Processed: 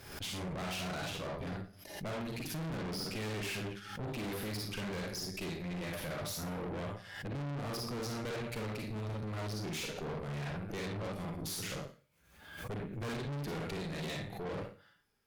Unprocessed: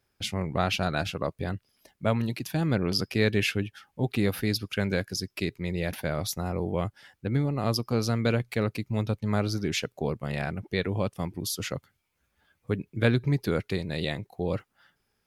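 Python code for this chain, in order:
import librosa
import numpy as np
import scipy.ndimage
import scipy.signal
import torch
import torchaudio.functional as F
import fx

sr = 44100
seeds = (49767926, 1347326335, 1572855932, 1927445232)

y = fx.rev_schroeder(x, sr, rt60_s=0.39, comb_ms=38, drr_db=0.5)
y = fx.tube_stage(y, sr, drive_db=35.0, bias=0.75)
y = fx.pre_swell(y, sr, db_per_s=64.0)
y = F.gain(torch.from_numpy(y), -2.0).numpy()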